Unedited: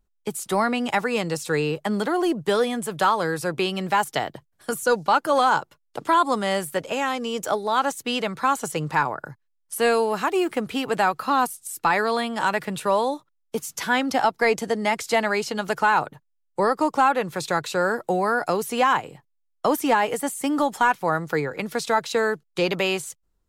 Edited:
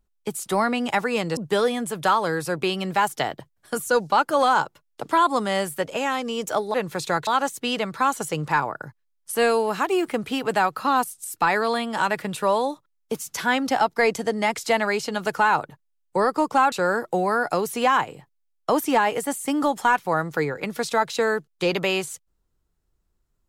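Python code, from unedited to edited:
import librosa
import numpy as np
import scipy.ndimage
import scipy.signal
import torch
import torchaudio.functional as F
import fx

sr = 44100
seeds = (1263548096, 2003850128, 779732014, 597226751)

y = fx.edit(x, sr, fx.cut(start_s=1.37, length_s=0.96),
    fx.move(start_s=17.15, length_s=0.53, to_s=7.7), tone=tone)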